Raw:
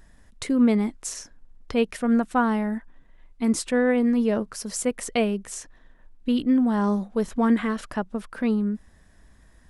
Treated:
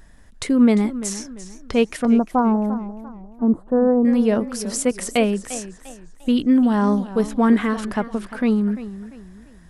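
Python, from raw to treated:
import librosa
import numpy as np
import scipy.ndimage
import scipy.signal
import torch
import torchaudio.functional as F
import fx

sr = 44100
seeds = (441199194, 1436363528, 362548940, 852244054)

y = fx.cheby2_lowpass(x, sr, hz=2200.0, order=4, stop_db=40, at=(2.05, 4.05))
y = fx.echo_warbled(y, sr, ms=346, feedback_pct=35, rate_hz=2.8, cents=114, wet_db=-14.5)
y = y * 10.0 ** (4.5 / 20.0)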